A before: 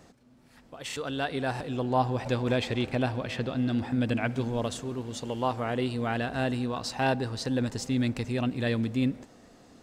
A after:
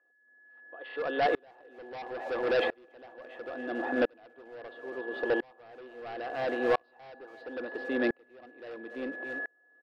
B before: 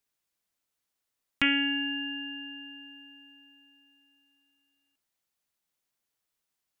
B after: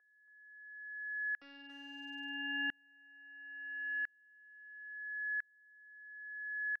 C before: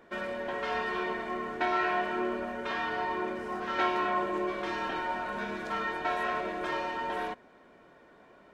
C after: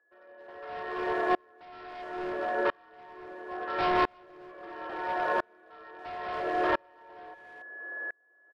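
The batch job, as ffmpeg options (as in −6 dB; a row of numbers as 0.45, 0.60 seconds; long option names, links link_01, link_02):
-filter_complex "[0:a]aeval=exprs='val(0)+0.0112*sin(2*PI*1700*n/s)':channel_layout=same,highpass=frequency=320:width=0.5412,highpass=frequency=320:width=1.3066,equalizer=frequency=340:width_type=q:width=4:gain=8,equalizer=frequency=500:width_type=q:width=4:gain=9,equalizer=frequency=720:width_type=q:width=4:gain=8,equalizer=frequency=1200:width_type=q:width=4:gain=6,equalizer=frequency=2300:width_type=q:width=4:gain=-5,lowpass=frequency=2900:width=0.5412,lowpass=frequency=2900:width=1.3066,aresample=11025,asoftclip=type=hard:threshold=-24.5dB,aresample=44100,asplit=2[link_01][link_02];[link_02]adelay=280,highpass=300,lowpass=3400,asoftclip=type=hard:threshold=-30dB,volume=-10dB[link_03];[link_01][link_03]amix=inputs=2:normalize=0,aeval=exprs='val(0)*pow(10,-36*if(lt(mod(-0.74*n/s,1),2*abs(-0.74)/1000),1-mod(-0.74*n/s,1)/(2*abs(-0.74)/1000),(mod(-0.74*n/s,1)-2*abs(-0.74)/1000)/(1-2*abs(-0.74)/1000))/20)':channel_layout=same,volume=5dB"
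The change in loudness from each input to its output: −3.5, −11.5, +0.5 LU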